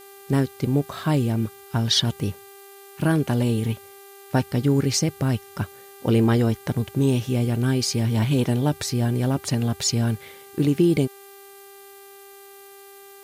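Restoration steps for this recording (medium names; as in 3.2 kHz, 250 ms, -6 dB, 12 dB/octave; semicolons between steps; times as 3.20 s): de-hum 396.2 Hz, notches 12; noise reduction 22 dB, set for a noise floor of -46 dBFS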